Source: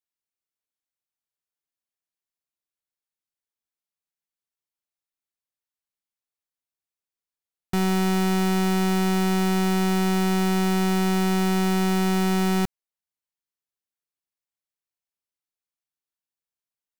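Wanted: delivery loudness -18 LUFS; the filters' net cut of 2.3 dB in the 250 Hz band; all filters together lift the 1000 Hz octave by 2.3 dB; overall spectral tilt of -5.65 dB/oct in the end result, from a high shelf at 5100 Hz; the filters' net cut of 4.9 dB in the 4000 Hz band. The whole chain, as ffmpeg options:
-af "equalizer=f=250:t=o:g=-4,equalizer=f=1k:t=o:g=4,equalizer=f=4k:t=o:g=-4,highshelf=f=5.1k:g=-6.5,volume=6dB"

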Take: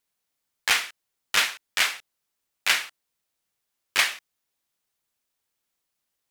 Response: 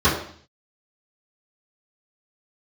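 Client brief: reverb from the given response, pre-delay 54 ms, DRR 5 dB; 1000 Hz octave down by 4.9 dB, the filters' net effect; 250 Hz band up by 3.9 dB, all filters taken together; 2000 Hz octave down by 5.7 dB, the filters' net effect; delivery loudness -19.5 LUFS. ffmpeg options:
-filter_complex "[0:a]equalizer=f=250:t=o:g=5.5,equalizer=f=1k:t=o:g=-4.5,equalizer=f=2k:t=o:g=-6,asplit=2[a][b];[1:a]atrim=start_sample=2205,adelay=54[c];[b][c]afir=irnorm=-1:irlink=0,volume=-25.5dB[d];[a][d]amix=inputs=2:normalize=0,volume=8dB"

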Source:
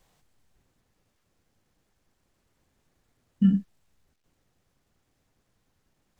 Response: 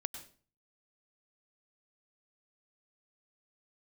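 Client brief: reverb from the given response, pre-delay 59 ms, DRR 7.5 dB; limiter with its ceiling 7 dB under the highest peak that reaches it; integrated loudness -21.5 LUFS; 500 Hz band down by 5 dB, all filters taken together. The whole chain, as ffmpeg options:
-filter_complex "[0:a]equalizer=f=500:t=o:g=-7,alimiter=limit=-19dB:level=0:latency=1,asplit=2[a][b];[1:a]atrim=start_sample=2205,adelay=59[c];[b][c]afir=irnorm=-1:irlink=0,volume=-7dB[d];[a][d]amix=inputs=2:normalize=0,volume=9.5dB"

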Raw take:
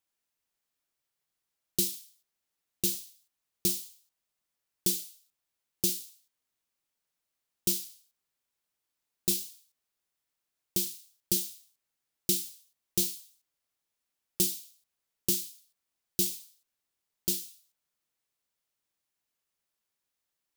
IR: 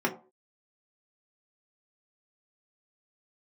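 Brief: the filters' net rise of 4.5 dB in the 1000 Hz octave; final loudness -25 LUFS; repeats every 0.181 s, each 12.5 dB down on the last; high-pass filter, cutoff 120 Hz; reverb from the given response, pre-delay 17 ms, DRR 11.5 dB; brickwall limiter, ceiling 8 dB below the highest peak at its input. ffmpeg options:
-filter_complex "[0:a]highpass=120,equalizer=f=1k:t=o:g=6,alimiter=limit=-19dB:level=0:latency=1,aecho=1:1:181|362|543:0.237|0.0569|0.0137,asplit=2[a][b];[1:a]atrim=start_sample=2205,adelay=17[c];[b][c]afir=irnorm=-1:irlink=0,volume=-22dB[d];[a][d]amix=inputs=2:normalize=0,volume=9.5dB"

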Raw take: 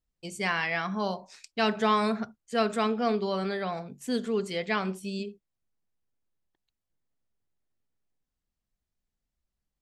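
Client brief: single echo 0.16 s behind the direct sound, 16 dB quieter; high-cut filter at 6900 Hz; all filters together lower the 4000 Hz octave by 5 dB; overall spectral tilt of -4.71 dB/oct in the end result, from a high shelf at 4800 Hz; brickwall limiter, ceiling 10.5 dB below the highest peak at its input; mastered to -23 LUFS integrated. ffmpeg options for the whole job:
-af "lowpass=6.9k,equalizer=f=4k:t=o:g=-5,highshelf=f=4.8k:g=-3,alimiter=limit=-23dB:level=0:latency=1,aecho=1:1:160:0.158,volume=10.5dB"

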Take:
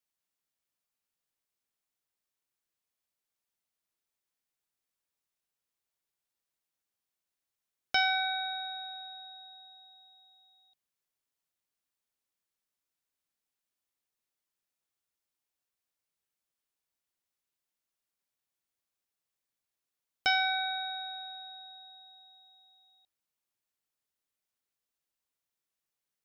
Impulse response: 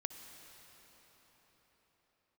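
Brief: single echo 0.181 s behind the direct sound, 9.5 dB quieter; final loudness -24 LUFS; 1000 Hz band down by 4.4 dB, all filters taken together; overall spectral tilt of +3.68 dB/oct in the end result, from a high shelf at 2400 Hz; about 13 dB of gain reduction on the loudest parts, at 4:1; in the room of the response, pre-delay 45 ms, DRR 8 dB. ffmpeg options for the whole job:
-filter_complex "[0:a]equalizer=f=1k:t=o:g=-6.5,highshelf=f=2.4k:g=-5,acompressor=threshold=-42dB:ratio=4,aecho=1:1:181:0.335,asplit=2[a][b];[1:a]atrim=start_sample=2205,adelay=45[c];[b][c]afir=irnorm=-1:irlink=0,volume=-6.5dB[d];[a][d]amix=inputs=2:normalize=0,volume=17.5dB"

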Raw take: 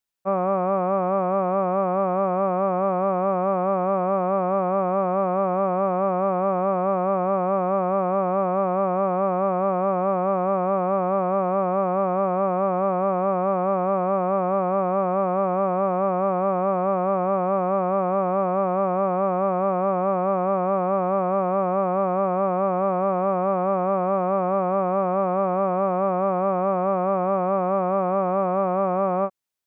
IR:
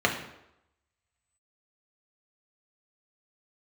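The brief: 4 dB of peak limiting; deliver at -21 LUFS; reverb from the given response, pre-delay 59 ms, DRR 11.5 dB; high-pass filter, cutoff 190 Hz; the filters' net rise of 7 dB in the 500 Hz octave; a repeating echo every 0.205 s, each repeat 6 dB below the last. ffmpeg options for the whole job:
-filter_complex "[0:a]highpass=190,equalizer=f=500:t=o:g=8.5,alimiter=limit=-12.5dB:level=0:latency=1,aecho=1:1:205|410|615|820|1025|1230:0.501|0.251|0.125|0.0626|0.0313|0.0157,asplit=2[a][b];[1:a]atrim=start_sample=2205,adelay=59[c];[b][c]afir=irnorm=-1:irlink=0,volume=-26dB[d];[a][d]amix=inputs=2:normalize=0,volume=-1.5dB"

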